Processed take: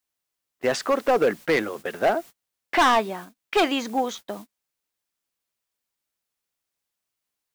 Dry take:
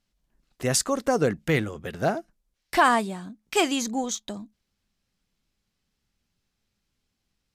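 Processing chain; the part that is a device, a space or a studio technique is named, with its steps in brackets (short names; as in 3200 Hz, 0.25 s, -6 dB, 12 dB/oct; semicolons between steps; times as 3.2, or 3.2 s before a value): aircraft radio (BPF 370–2600 Hz; hard clip -21.5 dBFS, distortion -7 dB; white noise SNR 24 dB; gate -44 dBFS, range -33 dB); gain +7 dB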